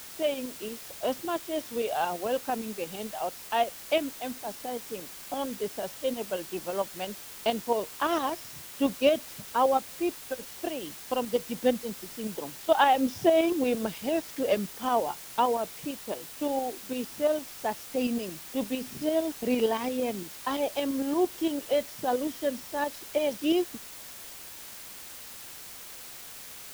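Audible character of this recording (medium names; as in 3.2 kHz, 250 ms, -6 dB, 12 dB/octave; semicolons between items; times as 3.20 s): tremolo saw up 8.8 Hz, depth 50%; a quantiser's noise floor 8-bit, dither triangular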